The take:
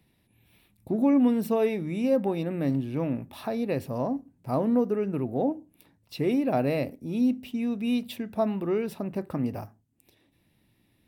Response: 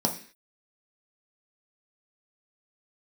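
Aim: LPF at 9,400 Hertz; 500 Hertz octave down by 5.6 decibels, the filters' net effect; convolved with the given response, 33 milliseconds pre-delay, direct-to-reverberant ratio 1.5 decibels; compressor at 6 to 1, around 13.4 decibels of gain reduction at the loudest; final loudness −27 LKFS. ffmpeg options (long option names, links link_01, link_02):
-filter_complex "[0:a]lowpass=9400,equalizer=frequency=500:width_type=o:gain=-7,acompressor=threshold=-35dB:ratio=6,asplit=2[link_01][link_02];[1:a]atrim=start_sample=2205,adelay=33[link_03];[link_02][link_03]afir=irnorm=-1:irlink=0,volume=-11dB[link_04];[link_01][link_04]amix=inputs=2:normalize=0,volume=4dB"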